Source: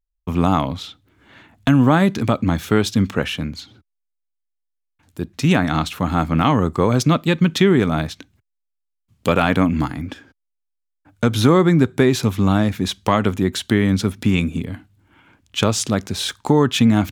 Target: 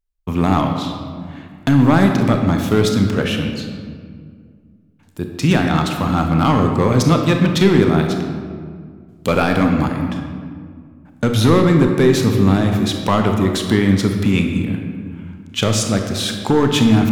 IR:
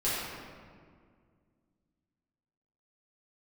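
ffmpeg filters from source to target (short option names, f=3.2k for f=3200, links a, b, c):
-filter_complex "[0:a]asoftclip=type=hard:threshold=-8dB,asplit=2[a][b];[1:a]atrim=start_sample=2205,adelay=31[c];[b][c]afir=irnorm=-1:irlink=0,volume=-13dB[d];[a][d]amix=inputs=2:normalize=0,volume=1dB"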